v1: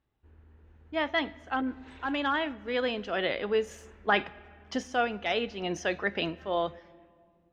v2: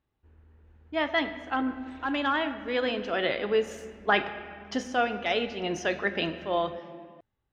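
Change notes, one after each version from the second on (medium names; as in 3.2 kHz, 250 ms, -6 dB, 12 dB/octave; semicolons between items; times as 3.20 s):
speech: send +11.5 dB; background: send off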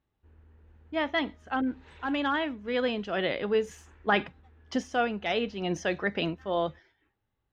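speech: add bass shelf 230 Hz +8.5 dB; reverb: off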